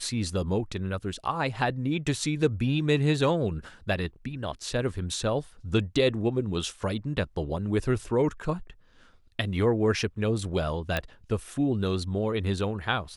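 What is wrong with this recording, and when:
10.97 pop -13 dBFS

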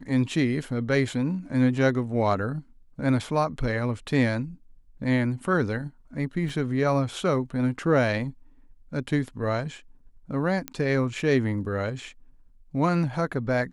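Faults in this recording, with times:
6.49 gap 3.5 ms
10.68 pop -14 dBFS

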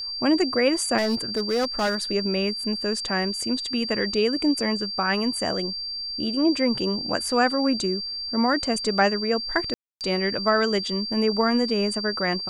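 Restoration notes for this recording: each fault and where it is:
tone 4700 Hz -29 dBFS
0.97–2.02 clipped -19 dBFS
9.74–10.01 gap 0.268 s

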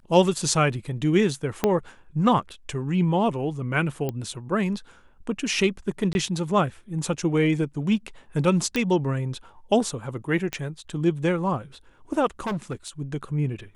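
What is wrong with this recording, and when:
1.64 pop -7 dBFS
4.09 pop -15 dBFS
6.13–6.15 gap 21 ms
8.76 pop -11 dBFS
10.53 pop -13 dBFS
12.4–12.88 clipped -24.5 dBFS

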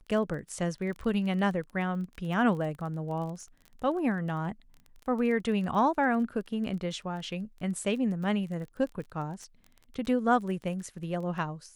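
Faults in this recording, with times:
crackle 21/s -37 dBFS

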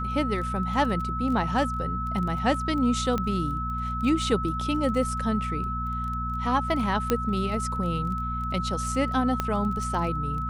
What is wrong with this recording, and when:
crackle 17/s -33 dBFS
hum 60 Hz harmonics 4 -32 dBFS
tone 1300 Hz -30 dBFS
3.18 pop -15 dBFS
7.1 pop -9 dBFS
9.4 pop -12 dBFS

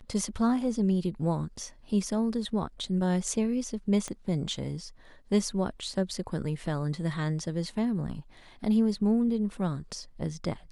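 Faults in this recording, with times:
4.08 pop -22 dBFS

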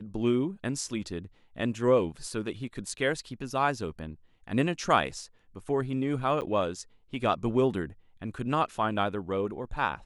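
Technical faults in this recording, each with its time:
6.41–6.42 gap 8.9 ms

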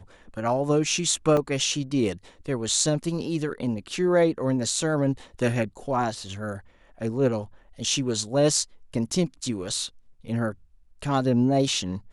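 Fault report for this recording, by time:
1.37 gap 2.8 ms

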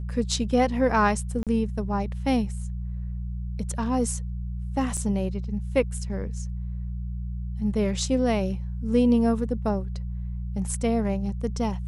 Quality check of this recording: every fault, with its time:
hum 60 Hz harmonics 3 -31 dBFS
1.43–1.47 gap 37 ms
4.97–4.98 gap 5.2 ms

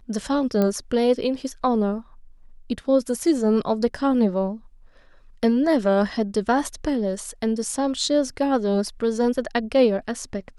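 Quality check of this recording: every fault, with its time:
0.62 pop -11 dBFS

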